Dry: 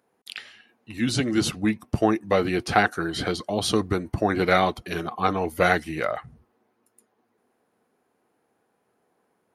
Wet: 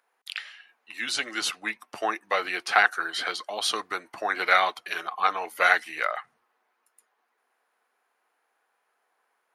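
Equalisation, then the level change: HPF 1300 Hz 12 dB/oct; high shelf 2700 Hz -9.5 dB; +7.5 dB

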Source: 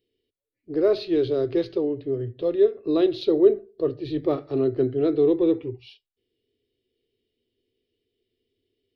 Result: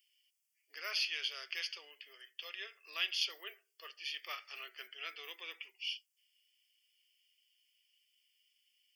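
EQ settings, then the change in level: ladder high-pass 2200 Hz, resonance 20%; Butterworth band-stop 3900 Hz, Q 2.4; +17.5 dB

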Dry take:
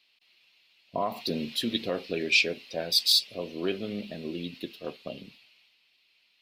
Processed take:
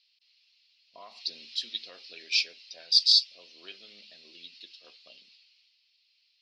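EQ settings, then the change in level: synth low-pass 5100 Hz, resonance Q 3.7; air absorption 79 m; differentiator; 0.0 dB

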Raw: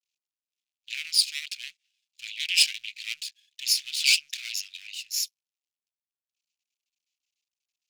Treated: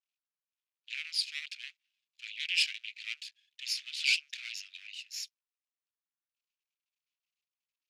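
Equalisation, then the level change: brick-wall FIR high-pass 900 Hz; band-pass 1200 Hz, Q 0.66; -1.0 dB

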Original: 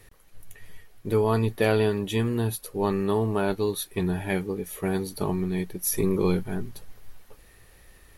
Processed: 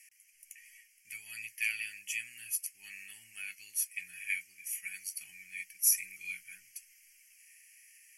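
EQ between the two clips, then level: elliptic high-pass 2200 Hz, stop band 50 dB; Butterworth band-stop 3800 Hz, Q 1.4; LPF 11000 Hz 12 dB/oct; +5.0 dB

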